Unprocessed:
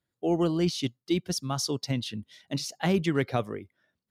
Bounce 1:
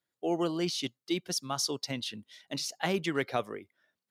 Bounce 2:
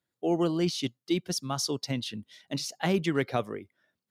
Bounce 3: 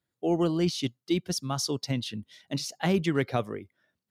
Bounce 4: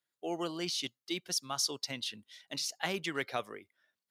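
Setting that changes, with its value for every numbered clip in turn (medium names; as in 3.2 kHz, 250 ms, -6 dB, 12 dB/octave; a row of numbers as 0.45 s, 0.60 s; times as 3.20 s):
high-pass, cutoff frequency: 480 Hz, 160 Hz, 48 Hz, 1.3 kHz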